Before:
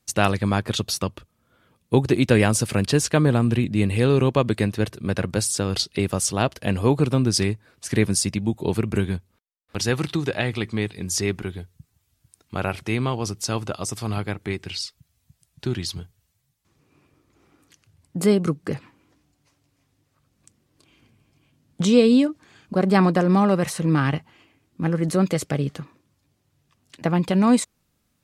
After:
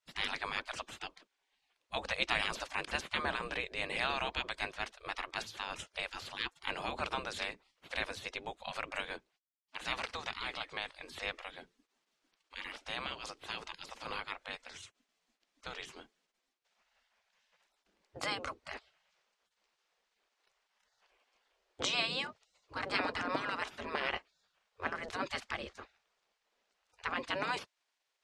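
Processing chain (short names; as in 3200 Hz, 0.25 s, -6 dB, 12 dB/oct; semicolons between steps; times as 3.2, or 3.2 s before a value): spectral gate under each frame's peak -20 dB weak; air absorption 110 m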